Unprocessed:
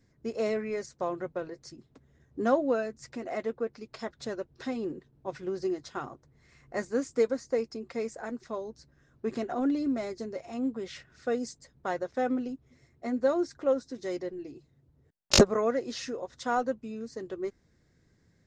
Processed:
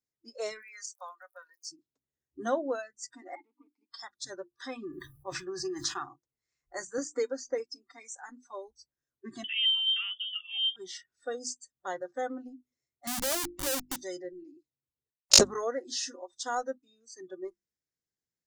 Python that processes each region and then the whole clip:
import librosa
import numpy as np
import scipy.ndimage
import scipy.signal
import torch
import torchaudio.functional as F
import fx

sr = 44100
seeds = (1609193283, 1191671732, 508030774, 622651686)

y = fx.highpass(x, sr, hz=1000.0, slope=12, at=(0.61, 1.71), fade=0.02)
y = fx.dmg_crackle(y, sr, seeds[0], per_s=19.0, level_db=-55.0, at=(0.61, 1.71), fade=0.02)
y = fx.chain(y, sr, fx.leveller(passes=2),
    fx.vowel_filter(vowel='u'), at=(3.35, 3.9))
y = fx.chain(y, sr, fx.small_body(hz=(1200.0, 1700.0, 2500.0), ring_ms=25, db=10),
    fx.sustainer(db_per_s=54.0), at=(4.53, 6.04))
y = fx.chain(y, sr, fx.lowpass(hz=6700.0, slope=12),
    fx.band_squash(depth_pct=70), at=(6.98, 7.58))
y = fx.chain(y, sr, fx.notch(hz=1700.0, q=18.0),
    fx.freq_invert(carrier_hz=3400), at=(9.44, 10.76))
y = fx.chain(y, sr, fx.lowpass(hz=1800.0, slope=24),
    fx.schmitt(flips_db=-43.0), at=(13.07, 13.96))
y = fx.hum_notches(y, sr, base_hz=50, count=7)
y = fx.noise_reduce_blind(y, sr, reduce_db=25)
y = fx.bass_treble(y, sr, bass_db=-7, treble_db=14)
y = y * 10.0 ** (-3.5 / 20.0)